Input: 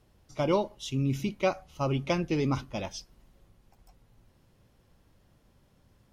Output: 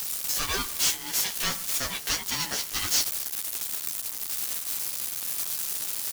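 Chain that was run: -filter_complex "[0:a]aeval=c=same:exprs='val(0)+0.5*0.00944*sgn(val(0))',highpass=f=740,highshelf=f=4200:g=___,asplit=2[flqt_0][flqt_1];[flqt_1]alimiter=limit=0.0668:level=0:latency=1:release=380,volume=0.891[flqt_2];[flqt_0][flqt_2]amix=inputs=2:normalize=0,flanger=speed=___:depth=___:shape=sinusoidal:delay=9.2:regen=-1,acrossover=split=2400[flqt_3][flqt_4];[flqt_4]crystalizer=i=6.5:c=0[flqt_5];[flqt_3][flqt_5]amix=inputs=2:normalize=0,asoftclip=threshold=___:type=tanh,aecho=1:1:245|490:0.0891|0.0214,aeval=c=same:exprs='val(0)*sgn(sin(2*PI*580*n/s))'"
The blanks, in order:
6, 1.7, 5.6, 0.112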